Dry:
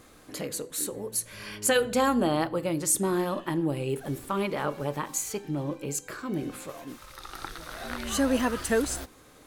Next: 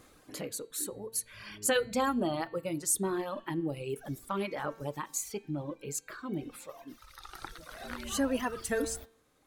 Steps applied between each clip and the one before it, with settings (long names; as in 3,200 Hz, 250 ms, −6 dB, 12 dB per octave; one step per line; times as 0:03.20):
reverb reduction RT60 1.9 s
hum removal 225.7 Hz, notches 20
level −4 dB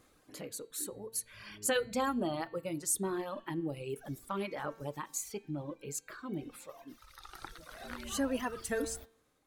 automatic gain control gain up to 4 dB
level −7 dB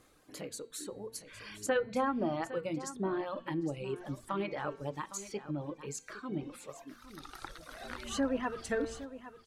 mains-hum notches 60/120/180/240 Hz
treble cut that deepens with the level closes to 1,900 Hz, closed at −29 dBFS
single-tap delay 810 ms −14 dB
level +1.5 dB